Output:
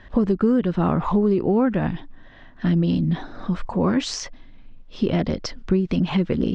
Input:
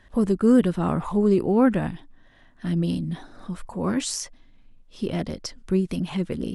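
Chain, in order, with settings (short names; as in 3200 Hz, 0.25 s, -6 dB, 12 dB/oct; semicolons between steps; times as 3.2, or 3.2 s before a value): Bessel low-pass 3800 Hz, order 6; compressor 6:1, threshold -25 dBFS, peak gain reduction 12 dB; gain +9 dB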